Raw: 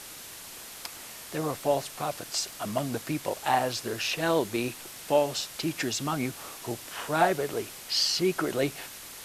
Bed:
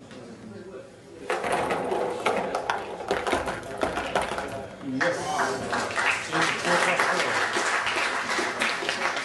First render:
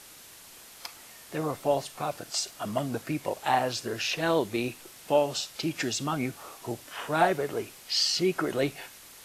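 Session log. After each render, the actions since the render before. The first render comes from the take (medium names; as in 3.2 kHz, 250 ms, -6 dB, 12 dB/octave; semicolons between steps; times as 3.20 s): noise print and reduce 6 dB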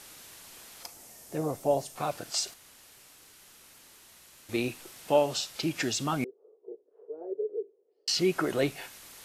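0.83–1.96 s: high-order bell 2.1 kHz -8.5 dB 2.4 oct; 2.54–4.49 s: room tone; 6.24–8.08 s: Butterworth band-pass 430 Hz, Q 4.6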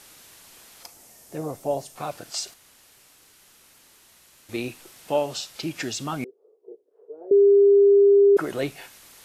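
7.31–8.37 s: bleep 401 Hz -11.5 dBFS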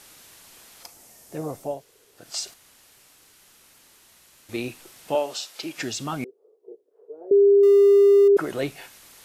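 1.73–2.23 s: room tone, crossfade 0.24 s; 5.15–5.78 s: high-pass 330 Hz; 7.63–8.28 s: jump at every zero crossing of -32.5 dBFS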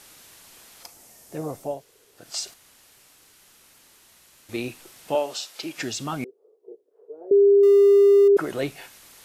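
no audible change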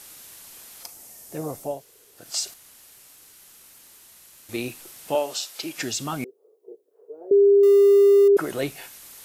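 treble shelf 8 kHz +10 dB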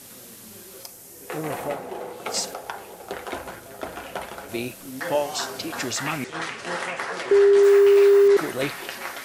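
add bed -7 dB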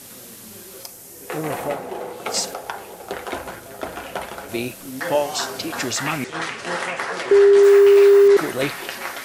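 trim +3.5 dB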